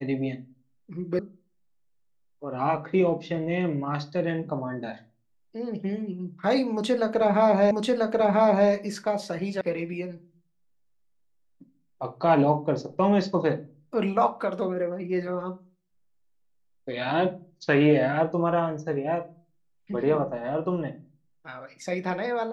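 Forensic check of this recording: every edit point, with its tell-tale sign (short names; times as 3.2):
1.19 sound cut off
7.71 repeat of the last 0.99 s
9.61 sound cut off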